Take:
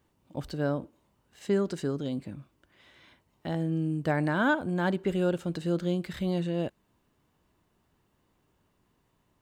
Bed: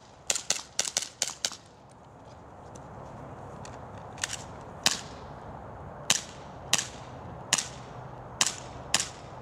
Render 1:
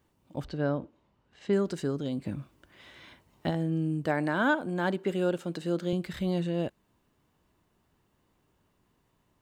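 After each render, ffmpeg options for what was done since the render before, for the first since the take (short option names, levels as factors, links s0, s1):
-filter_complex "[0:a]asettb=1/sr,asplit=3[s0][s1][s2];[s0]atrim=end=0.444[s3];[s1]atrim=start=0.44:end=1.53,asetpts=PTS-STARTPTS,afade=t=in:d=0.004:c=qsin,afade=t=out:st=1.086:d=0.004:c=qsin,lowpass=4200[s4];[s2]atrim=start=1.526[s5];[s3][s4]acrossfade=d=0.004:c1=hsin:c2=qsin[s6];[s6][s5]acrossfade=d=0.004:c1=qsin:c2=hsin,asplit=3[s7][s8][s9];[s7]afade=t=out:st=2.24:d=0.02[s10];[s8]acontrast=47,afade=t=in:st=2.24:d=0.02,afade=t=out:st=3.49:d=0.02[s11];[s9]afade=t=in:st=3.49:d=0.02[s12];[s10][s11][s12]amix=inputs=3:normalize=0,asettb=1/sr,asplit=3[s13][s14][s15];[s13]atrim=end=4.064[s16];[s14]atrim=start=4.06:end=5.93,asetpts=PTS-STARTPTS,afade=t=in:d=0.004:c=qsin,afade=t=out:st=1.866:d=0.004:c=qsin,highpass=190[s17];[s15]atrim=start=5.926[s18];[s16][s17]acrossfade=d=0.004:c1=hsin:c2=qsin[s19];[s19][s18]acrossfade=d=0.004:c1=qsin:c2=hsin"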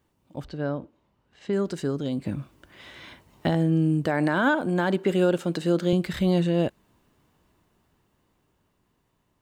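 -af "alimiter=limit=0.106:level=0:latency=1:release=43,dynaudnorm=f=340:g=13:m=2.37"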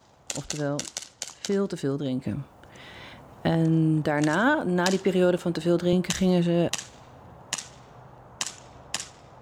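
-filter_complex "[1:a]volume=0.531[s0];[0:a][s0]amix=inputs=2:normalize=0"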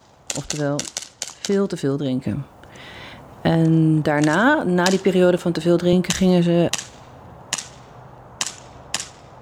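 -af "volume=2"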